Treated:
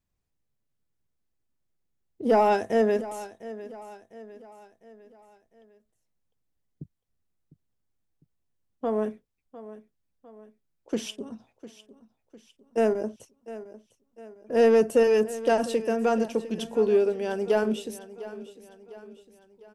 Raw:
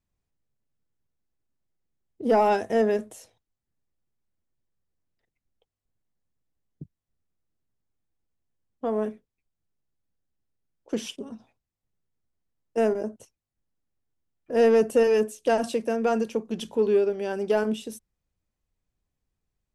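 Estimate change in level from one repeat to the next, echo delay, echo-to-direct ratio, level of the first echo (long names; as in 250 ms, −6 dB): −6.5 dB, 703 ms, −15.0 dB, −16.0 dB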